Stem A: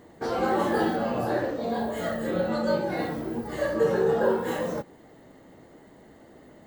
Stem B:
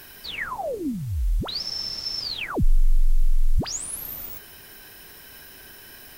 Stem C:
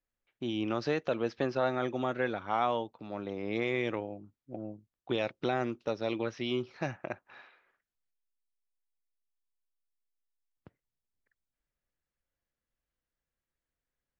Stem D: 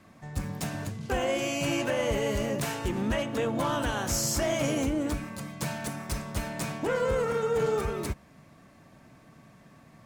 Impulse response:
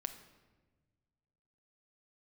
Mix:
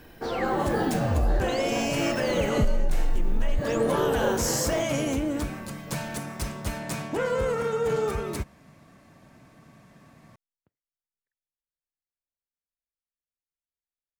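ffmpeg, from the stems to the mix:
-filter_complex "[0:a]volume=-2dB[a];[1:a]bass=f=250:g=10,treble=f=4k:g=-10,volume=-7dB[b];[2:a]volume=-16dB[c];[3:a]adelay=300,volume=1dB[d];[a][b][c][d]amix=inputs=4:normalize=0,acompressor=threshold=-18dB:ratio=12"

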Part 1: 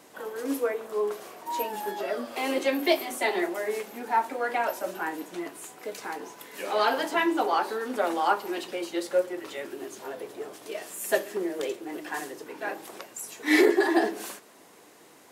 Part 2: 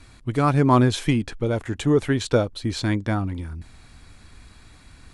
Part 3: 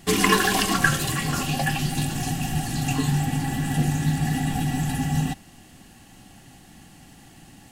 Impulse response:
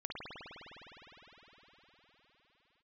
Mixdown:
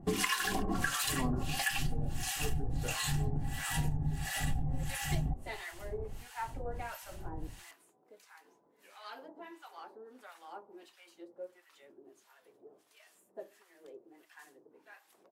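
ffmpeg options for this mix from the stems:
-filter_complex "[0:a]adelay=2250,volume=-9.5dB,afade=t=out:st=7.47:d=0.46:silence=0.375837[a];[1:a]flanger=delay=16:depth=6.2:speed=0.4,adelay=500,volume=-9dB[b];[2:a]asubboost=boost=11.5:cutoff=72,volume=-0.5dB[c];[a][b][c]amix=inputs=3:normalize=0,acrossover=split=900[d][e];[d]aeval=exprs='val(0)*(1-1/2+1/2*cos(2*PI*1.5*n/s))':c=same[f];[e]aeval=exprs='val(0)*(1-1/2-1/2*cos(2*PI*1.5*n/s))':c=same[g];[f][g]amix=inputs=2:normalize=0,acompressor=threshold=-28dB:ratio=16"

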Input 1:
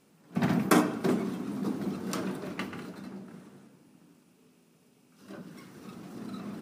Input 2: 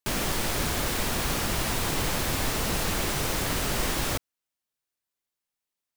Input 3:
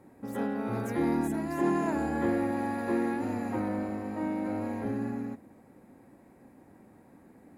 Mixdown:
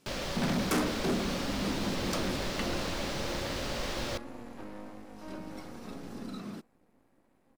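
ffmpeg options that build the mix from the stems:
-filter_complex "[0:a]volume=-1.5dB[a];[1:a]acrossover=split=5900[b][c];[c]acompressor=threshold=-46dB:ratio=4:attack=1:release=60[d];[b][d]amix=inputs=2:normalize=0,equalizer=f=550:t=o:w=0.25:g=10.5,volume=-8.5dB[e];[2:a]highpass=110,aeval=exprs='max(val(0),0)':c=same,adelay=1050,volume=-8.5dB[f];[a][e][f]amix=inputs=3:normalize=0,equalizer=f=4.7k:t=o:w=1.3:g=5,asoftclip=type=hard:threshold=-25dB"

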